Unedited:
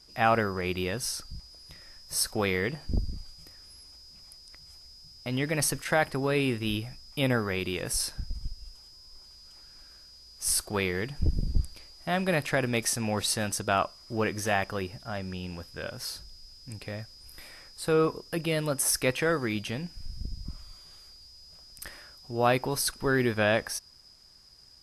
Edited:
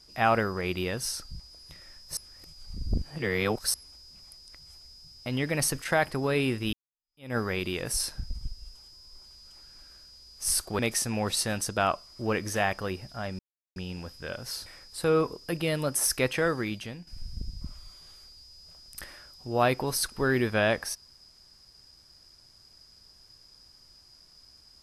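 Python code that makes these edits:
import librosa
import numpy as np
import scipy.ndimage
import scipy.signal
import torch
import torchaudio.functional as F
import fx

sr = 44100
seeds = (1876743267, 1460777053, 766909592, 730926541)

y = fx.edit(x, sr, fx.reverse_span(start_s=2.17, length_s=1.57),
    fx.fade_in_span(start_s=6.73, length_s=0.64, curve='exp'),
    fx.cut(start_s=10.79, length_s=1.91),
    fx.insert_silence(at_s=15.3, length_s=0.37),
    fx.cut(start_s=16.2, length_s=1.3),
    fx.fade_out_to(start_s=19.38, length_s=0.53, floor_db=-10.5), tone=tone)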